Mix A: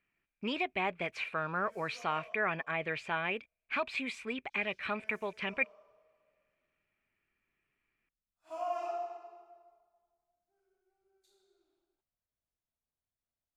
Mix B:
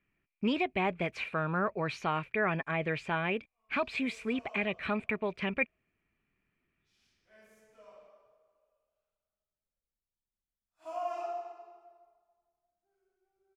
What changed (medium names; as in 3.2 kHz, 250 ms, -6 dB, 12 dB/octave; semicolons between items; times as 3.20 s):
speech: add bass shelf 400 Hz +10.5 dB; background: entry +2.35 s